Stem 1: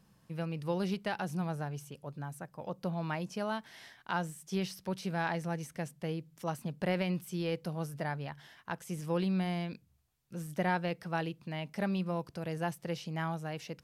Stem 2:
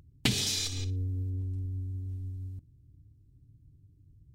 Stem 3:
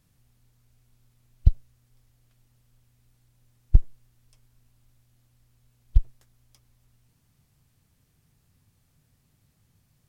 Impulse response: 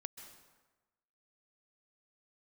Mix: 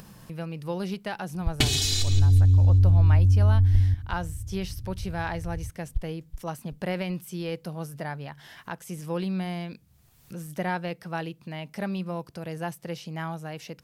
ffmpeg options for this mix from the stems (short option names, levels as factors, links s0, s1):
-filter_complex "[0:a]highshelf=f=12000:g=7,volume=1.26[s0];[1:a]asubboost=boost=11:cutoff=180,aecho=1:1:2.7:0.8,adelay=1350,volume=1.33,asplit=2[s1][s2];[s2]volume=0.0708[s3];[2:a]volume=0.299,asplit=2[s4][s5];[s5]volume=0.316[s6];[s3][s6]amix=inputs=2:normalize=0,aecho=0:1:379|758|1137|1516:1|0.29|0.0841|0.0244[s7];[s0][s1][s4][s7]amix=inputs=4:normalize=0,acompressor=mode=upward:threshold=0.0178:ratio=2.5"